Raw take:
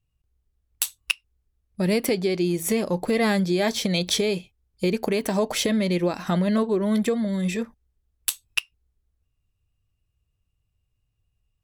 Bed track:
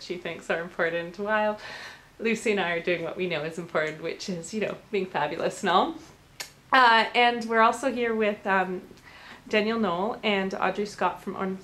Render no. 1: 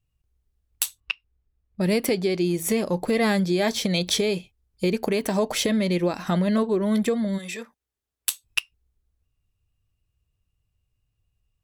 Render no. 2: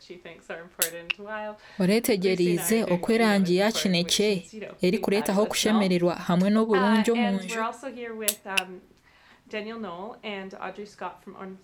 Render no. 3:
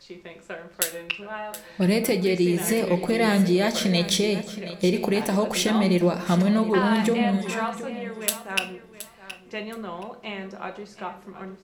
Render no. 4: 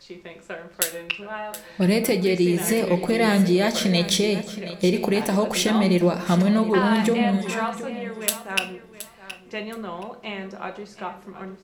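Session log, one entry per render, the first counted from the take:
0:01.00–0:01.81: high-frequency loss of the air 240 metres; 0:07.37–0:08.43: high-pass filter 1,100 Hz → 430 Hz 6 dB per octave
mix in bed track −9.5 dB
repeating echo 722 ms, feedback 22%, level −14 dB; rectangular room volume 690 cubic metres, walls furnished, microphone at 0.85 metres
level +1.5 dB

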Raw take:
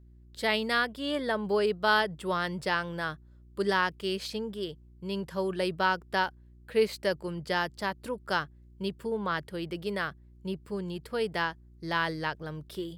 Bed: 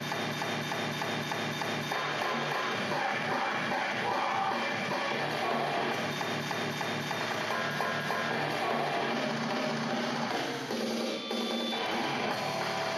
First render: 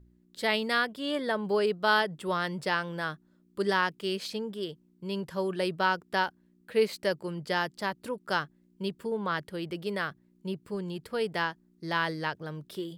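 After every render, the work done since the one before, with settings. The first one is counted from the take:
hum removal 60 Hz, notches 2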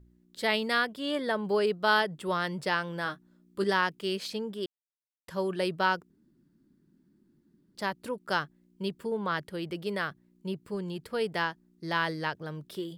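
0:03.04–0:03.64: double-tracking delay 16 ms −6 dB
0:04.66–0:05.28: silence
0:06.10–0:07.75: fill with room tone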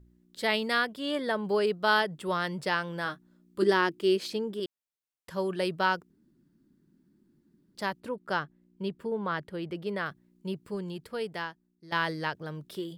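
0:03.62–0:04.60: parametric band 340 Hz +15 dB 0.35 octaves
0:08.00–0:10.06: high-shelf EQ 3,700 Hz −10 dB
0:10.68–0:11.92: fade out, to −14.5 dB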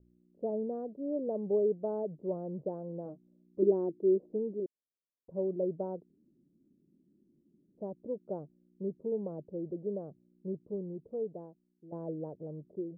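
Butterworth low-pass 610 Hz 36 dB per octave
low-shelf EQ 140 Hz −11 dB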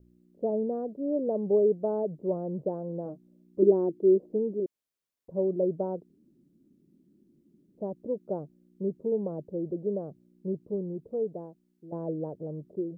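level +5.5 dB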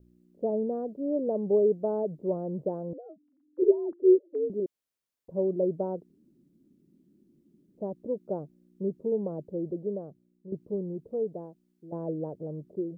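0:02.93–0:04.50: three sine waves on the formant tracks
0:09.65–0:10.52: fade out, to −12.5 dB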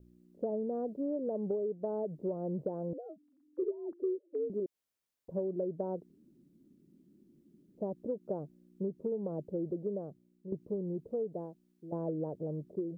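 downward compressor 16 to 1, threshold −31 dBFS, peak gain reduction 17 dB

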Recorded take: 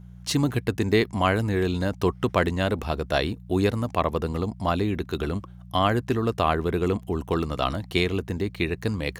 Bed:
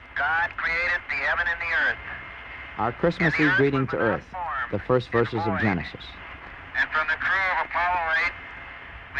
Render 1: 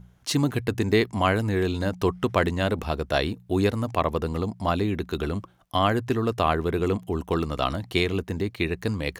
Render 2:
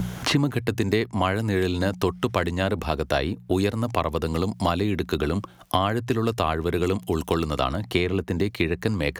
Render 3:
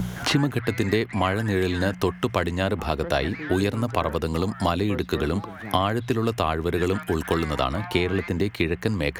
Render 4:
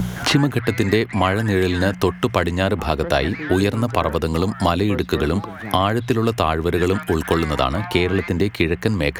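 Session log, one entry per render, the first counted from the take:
hum removal 60 Hz, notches 3
multiband upward and downward compressor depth 100%
mix in bed −13.5 dB
level +5 dB; brickwall limiter −3 dBFS, peak gain reduction 2 dB

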